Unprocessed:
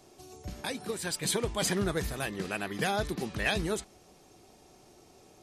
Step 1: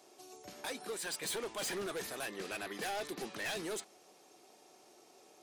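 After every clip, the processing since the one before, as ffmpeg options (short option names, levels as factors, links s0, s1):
-af "highpass=360,volume=47.3,asoftclip=hard,volume=0.0211,volume=0.794"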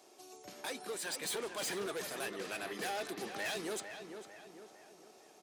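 -filter_complex "[0:a]highpass=f=120:p=1,asplit=2[s0][s1];[s1]adelay=451,lowpass=f=2800:p=1,volume=0.398,asplit=2[s2][s3];[s3]adelay=451,lowpass=f=2800:p=1,volume=0.49,asplit=2[s4][s5];[s5]adelay=451,lowpass=f=2800:p=1,volume=0.49,asplit=2[s6][s7];[s7]adelay=451,lowpass=f=2800:p=1,volume=0.49,asplit=2[s8][s9];[s9]adelay=451,lowpass=f=2800:p=1,volume=0.49,asplit=2[s10][s11];[s11]adelay=451,lowpass=f=2800:p=1,volume=0.49[s12];[s0][s2][s4][s6][s8][s10][s12]amix=inputs=7:normalize=0"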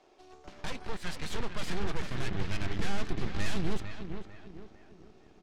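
-af "highpass=100,lowpass=3300,aeval=exprs='0.0376*(cos(1*acos(clip(val(0)/0.0376,-1,1)))-cos(1*PI/2))+0.0133*(cos(6*acos(clip(val(0)/0.0376,-1,1)))-cos(6*PI/2))':c=same,asubboost=boost=8:cutoff=220"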